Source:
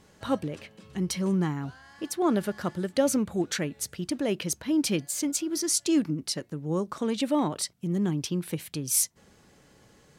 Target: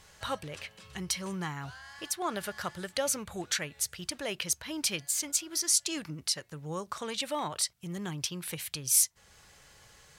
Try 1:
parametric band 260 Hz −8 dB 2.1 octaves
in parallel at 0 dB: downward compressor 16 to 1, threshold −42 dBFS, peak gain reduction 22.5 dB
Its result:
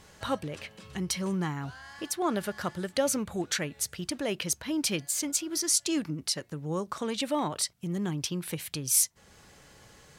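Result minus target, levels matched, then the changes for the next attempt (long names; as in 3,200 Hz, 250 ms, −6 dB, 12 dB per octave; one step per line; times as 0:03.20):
250 Hz band +6.5 dB
change: parametric band 260 Hz −19 dB 2.1 octaves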